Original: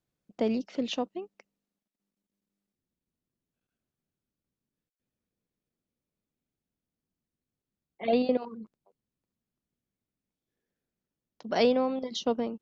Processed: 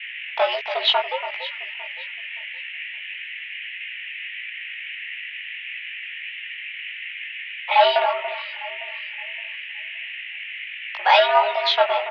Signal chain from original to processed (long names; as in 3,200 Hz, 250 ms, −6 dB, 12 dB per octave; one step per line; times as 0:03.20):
high-shelf EQ 2,400 Hz +11 dB
comb filter 2.6 ms, depth 33%
leveller curve on the samples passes 3
noise in a band 1,600–2,700 Hz −38 dBFS
chorus effect 1.5 Hz, delay 18 ms, depth 3 ms
on a send: delay that swaps between a low-pass and a high-pass 296 ms, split 1,200 Hz, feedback 52%, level −10 dB
on the sum: single-sideband voice off tune +130 Hz 520–3,300 Hz
wrong playback speed 24 fps film run at 25 fps
level +7 dB